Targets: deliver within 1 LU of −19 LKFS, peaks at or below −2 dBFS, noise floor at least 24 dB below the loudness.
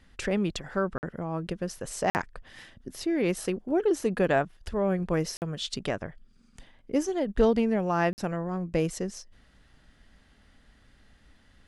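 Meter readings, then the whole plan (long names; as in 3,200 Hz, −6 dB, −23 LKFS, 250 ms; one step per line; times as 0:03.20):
number of dropouts 4; longest dropout 49 ms; integrated loudness −29.0 LKFS; sample peak −11.0 dBFS; target loudness −19.0 LKFS
→ repair the gap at 0:00.98/0:02.10/0:05.37/0:08.13, 49 ms
level +10 dB
brickwall limiter −2 dBFS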